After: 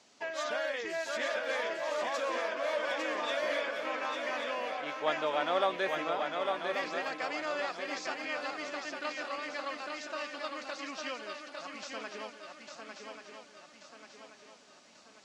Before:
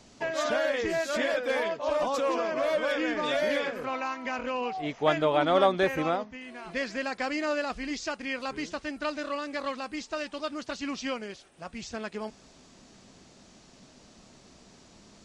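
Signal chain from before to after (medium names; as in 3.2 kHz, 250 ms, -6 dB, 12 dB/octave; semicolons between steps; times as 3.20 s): frequency weighting A; on a send: shuffle delay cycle 1136 ms, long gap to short 3:1, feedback 46%, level -5 dB; on the sum: trim -5.5 dB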